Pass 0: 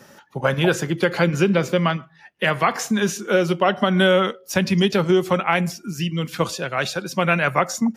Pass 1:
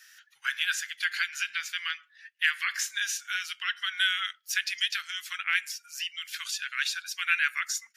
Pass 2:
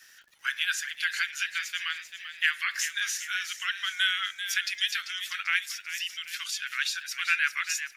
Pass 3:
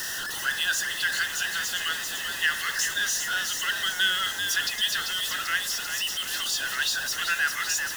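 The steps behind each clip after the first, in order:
elliptic high-pass 1.6 kHz, stop band 60 dB; trim -1.5 dB
crackle 140 per s -49 dBFS; on a send: frequency-shifting echo 391 ms, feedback 45%, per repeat +97 Hz, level -10 dB
jump at every zero crossing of -26.5 dBFS; Butterworth band-stop 2.3 kHz, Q 3.6

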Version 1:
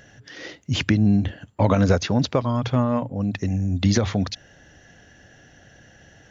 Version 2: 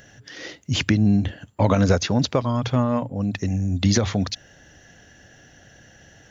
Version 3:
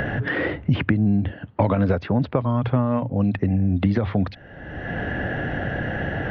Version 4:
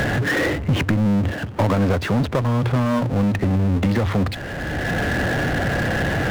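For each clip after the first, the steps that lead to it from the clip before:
treble shelf 6.2 kHz +8 dB
Gaussian low-pass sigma 3.3 samples; three bands compressed up and down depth 100%
power-law waveshaper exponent 0.5; trim -4.5 dB

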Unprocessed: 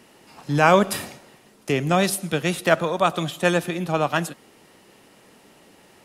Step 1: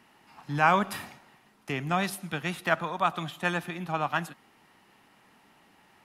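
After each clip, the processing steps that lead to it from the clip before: FFT filter 240 Hz 0 dB, 530 Hz -7 dB, 810 Hz +5 dB, 1.9 kHz +4 dB, 8.4 kHz -6 dB, 12 kHz -2 dB; trim -8.5 dB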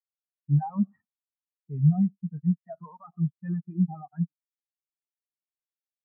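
fuzz box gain 41 dB, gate -42 dBFS; low-pass 2 kHz 6 dB/octave; spectral contrast expander 4:1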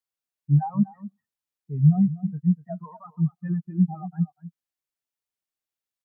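echo from a far wall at 42 m, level -16 dB; trim +3.5 dB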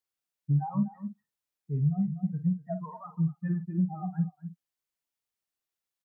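compression 6:1, threshold -24 dBFS, peak gain reduction 12 dB; doubling 49 ms -10 dB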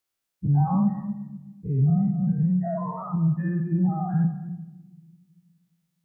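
every event in the spectrogram widened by 120 ms; on a send at -9.5 dB: reverberation RT60 1.2 s, pre-delay 3 ms; on the sum: trim +2 dB

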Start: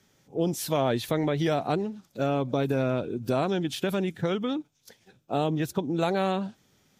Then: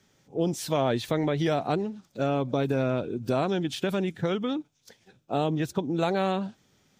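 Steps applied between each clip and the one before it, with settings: peaking EQ 12 kHz -13 dB 0.31 oct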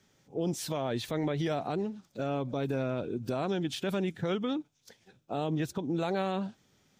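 peak limiter -19.5 dBFS, peak gain reduction 6.5 dB; trim -2.5 dB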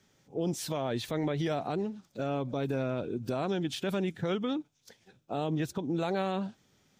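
no audible change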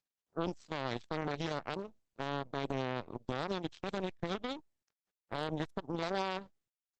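upward compressor, threshold -42 dBFS; power-law waveshaper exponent 3; trim +1 dB; Opus 12 kbps 48 kHz

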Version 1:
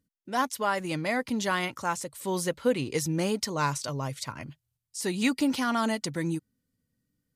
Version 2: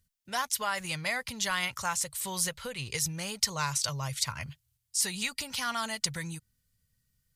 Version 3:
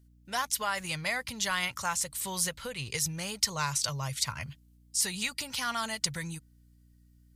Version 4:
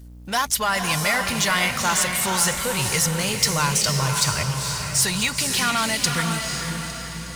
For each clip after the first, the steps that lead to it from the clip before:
bass shelf 370 Hz +8.5 dB; compression, threshold -25 dBFS, peak gain reduction 10 dB; amplifier tone stack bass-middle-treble 10-0-10; trim +8.5 dB
hum 60 Hz, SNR 26 dB
power-law waveshaper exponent 0.7; on a send: echo that smears into a reverb 493 ms, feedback 51%, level -4.5 dB; on the sum: trim +4 dB

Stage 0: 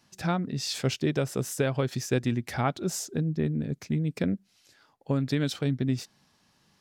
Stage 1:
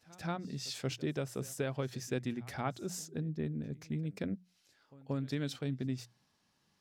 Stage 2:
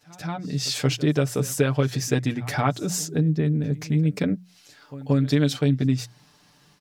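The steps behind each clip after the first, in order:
hum notches 60/120/180 Hz; pre-echo 181 ms -21.5 dB; trim -9 dB
in parallel at +1.5 dB: compression, threshold -44 dBFS, peak gain reduction 13.5 dB; on the sum: comb 6.8 ms; level rider gain up to 9.5 dB

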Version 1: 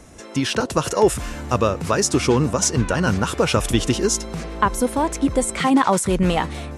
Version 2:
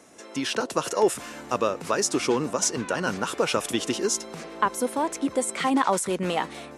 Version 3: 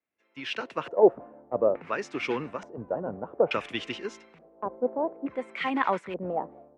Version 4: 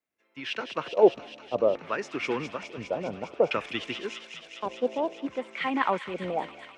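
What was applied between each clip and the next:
high-pass 260 Hz 12 dB/octave; trim -4.5 dB
LFO low-pass square 0.57 Hz 650–2300 Hz; three bands expanded up and down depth 100%; trim -6.5 dB
feedback echo behind a high-pass 204 ms, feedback 81%, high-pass 2.7 kHz, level -5 dB

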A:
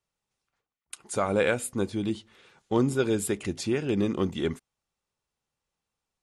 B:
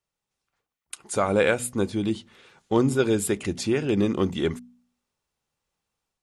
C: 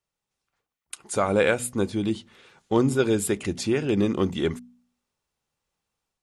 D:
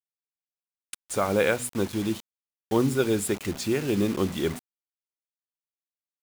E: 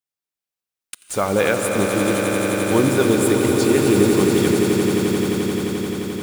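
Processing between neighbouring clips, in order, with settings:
de-hum 61 Hz, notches 4; level rider gain up to 4.5 dB; trim -1 dB
no audible change
word length cut 6-bit, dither none; trim -2 dB
echo with a slow build-up 87 ms, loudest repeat 8, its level -9 dB; gated-style reverb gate 280 ms rising, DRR 8.5 dB; trim +4.5 dB

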